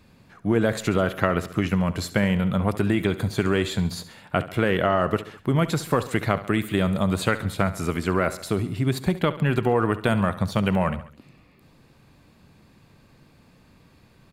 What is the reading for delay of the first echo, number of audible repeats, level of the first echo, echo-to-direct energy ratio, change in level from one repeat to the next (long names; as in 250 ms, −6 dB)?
69 ms, 3, −15.0 dB, −13.5 dB, −5.0 dB